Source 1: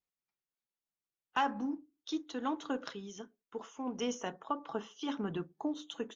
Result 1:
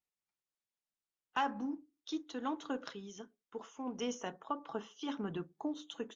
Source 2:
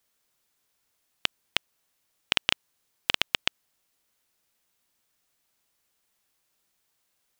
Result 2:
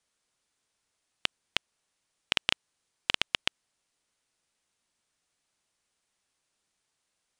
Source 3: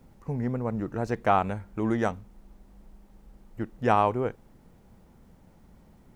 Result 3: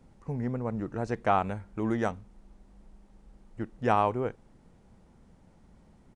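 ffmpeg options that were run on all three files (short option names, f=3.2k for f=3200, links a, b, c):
-af "aresample=22050,aresample=44100,volume=-2.5dB"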